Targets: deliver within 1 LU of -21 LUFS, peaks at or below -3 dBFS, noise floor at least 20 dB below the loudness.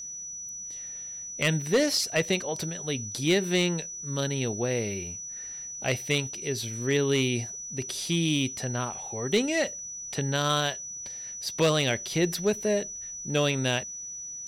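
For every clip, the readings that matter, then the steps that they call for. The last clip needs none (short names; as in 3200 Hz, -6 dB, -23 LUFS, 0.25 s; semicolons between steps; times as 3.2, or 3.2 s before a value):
clipped 0.3%; flat tops at -16.5 dBFS; steady tone 5900 Hz; tone level -36 dBFS; loudness -28.0 LUFS; peak -16.5 dBFS; loudness target -21.0 LUFS
-> clip repair -16.5 dBFS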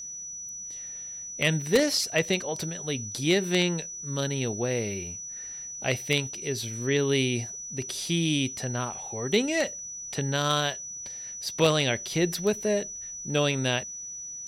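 clipped 0.0%; steady tone 5900 Hz; tone level -36 dBFS
-> notch 5900 Hz, Q 30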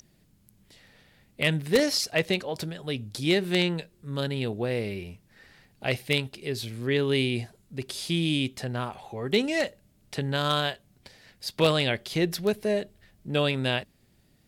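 steady tone none; loudness -27.5 LUFS; peak -7.5 dBFS; loudness target -21.0 LUFS
-> gain +6.5 dB; limiter -3 dBFS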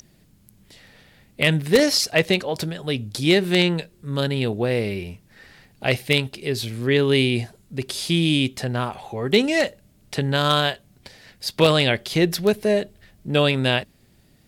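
loudness -21.5 LUFS; peak -3.0 dBFS; noise floor -57 dBFS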